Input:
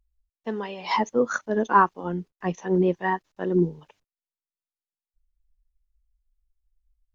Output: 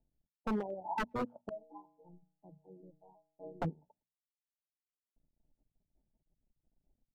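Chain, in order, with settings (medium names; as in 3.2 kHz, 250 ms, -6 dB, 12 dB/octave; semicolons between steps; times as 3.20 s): companding laws mixed up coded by A; compression 2:1, threshold -33 dBFS, peak gain reduction 11.5 dB; rippled Chebyshev low-pass 910 Hz, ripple 6 dB; 1.49–3.62 s: inharmonic resonator 150 Hz, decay 0.82 s, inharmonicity 0.008; speakerphone echo 110 ms, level -29 dB; gain riding 0.5 s; wavefolder -33.5 dBFS; hum notches 60/120/180/240 Hz; reverb removal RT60 1.5 s; trim +6.5 dB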